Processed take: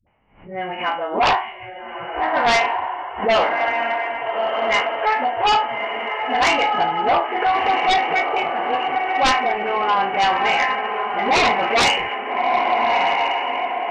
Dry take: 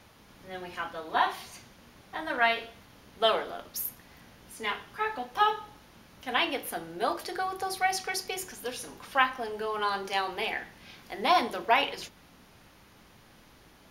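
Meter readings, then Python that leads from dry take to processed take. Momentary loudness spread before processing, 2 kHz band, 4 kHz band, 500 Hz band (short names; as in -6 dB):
17 LU, +11.5 dB, +10.5 dB, +12.0 dB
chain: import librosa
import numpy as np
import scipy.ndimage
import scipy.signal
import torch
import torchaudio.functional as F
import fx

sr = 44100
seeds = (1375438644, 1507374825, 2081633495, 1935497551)

y = fx.spec_trails(x, sr, decay_s=0.35)
y = fx.low_shelf(y, sr, hz=86.0, db=9.5)
y = fx.echo_diffused(y, sr, ms=1284, feedback_pct=45, wet_db=-5.5)
y = fx.dynamic_eq(y, sr, hz=450.0, q=1.4, threshold_db=-40.0, ratio=4.0, max_db=-4)
y = scipy.signal.sosfilt(scipy.signal.cheby1(6, 9, 3000.0, 'lowpass', fs=sr, output='sos'), y)
y = fx.dispersion(y, sr, late='highs', ms=70.0, hz=380.0)
y = fx.noise_reduce_blind(y, sr, reduce_db=21)
y = fx.fold_sine(y, sr, drive_db=13, ceiling_db=-12.0)
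y = fx.pre_swell(y, sr, db_per_s=120.0)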